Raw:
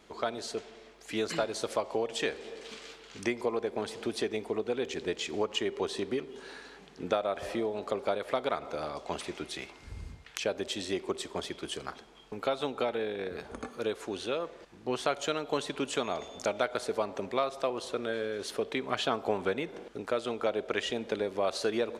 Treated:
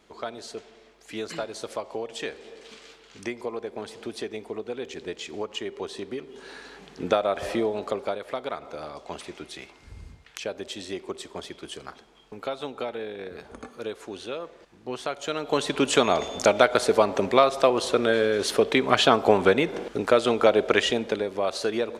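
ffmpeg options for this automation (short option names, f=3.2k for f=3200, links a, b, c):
-af "volume=19dB,afade=t=in:st=6.17:d=0.75:silence=0.398107,afade=t=out:st=7.67:d=0.54:silence=0.421697,afade=t=in:st=15.22:d=0.74:silence=0.237137,afade=t=out:st=20.67:d=0.57:silence=0.398107"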